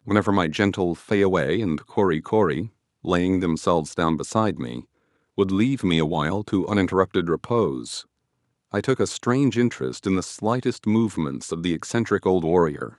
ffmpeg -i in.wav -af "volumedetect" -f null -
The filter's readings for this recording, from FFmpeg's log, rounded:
mean_volume: -22.7 dB
max_volume: -2.3 dB